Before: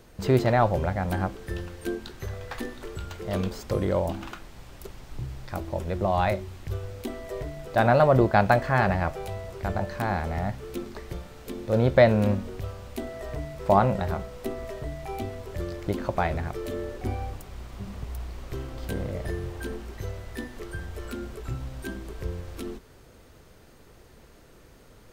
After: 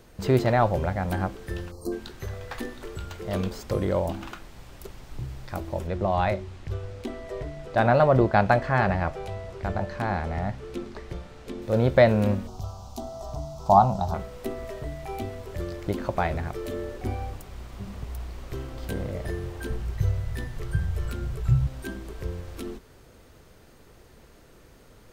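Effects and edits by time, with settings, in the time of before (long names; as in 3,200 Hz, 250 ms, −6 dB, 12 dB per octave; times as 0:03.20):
0:01.71–0:01.92: gain on a spectral selection 1,300–4,000 Hz −29 dB
0:05.87–0:11.62: high-frequency loss of the air 52 metres
0:12.47–0:14.14: drawn EQ curve 190 Hz 0 dB, 510 Hz −12 dB, 750 Hz +8 dB, 1,300 Hz −2 dB, 1,800 Hz −24 dB, 3,400 Hz −3 dB, 6,000 Hz +7 dB, 8,700 Hz −3 dB
0:19.70–0:21.67: low shelf with overshoot 190 Hz +8.5 dB, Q 3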